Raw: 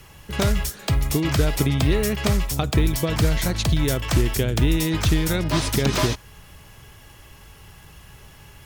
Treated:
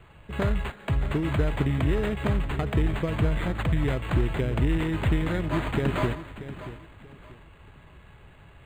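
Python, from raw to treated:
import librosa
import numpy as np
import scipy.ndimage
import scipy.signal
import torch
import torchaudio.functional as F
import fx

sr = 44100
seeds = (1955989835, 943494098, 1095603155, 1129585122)

p1 = fx.notch(x, sr, hz=790.0, q=21.0)
p2 = p1 + fx.echo_feedback(p1, sr, ms=633, feedback_pct=28, wet_db=-13.0, dry=0)
p3 = np.interp(np.arange(len(p2)), np.arange(len(p2))[::8], p2[::8])
y = p3 * 10.0 ** (-4.5 / 20.0)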